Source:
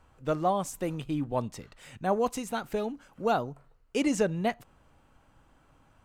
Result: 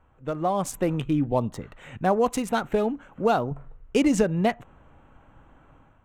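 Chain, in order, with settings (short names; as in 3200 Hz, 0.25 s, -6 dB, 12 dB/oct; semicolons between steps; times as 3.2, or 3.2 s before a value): Wiener smoothing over 9 samples; 3.51–4.24 low shelf 170 Hz +9.5 dB; compressor 4:1, threshold -26 dBFS, peak gain reduction 6.5 dB; 1.01–1.61 bell 590 Hz -> 2800 Hz -14 dB 0.41 oct; AGC gain up to 8.5 dB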